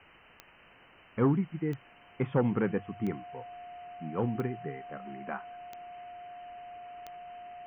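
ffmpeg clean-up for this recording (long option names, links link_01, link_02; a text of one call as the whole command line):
ffmpeg -i in.wav -af "adeclick=threshold=4,bandreject=frequency=710:width=30,afwtdn=0.0032" out.wav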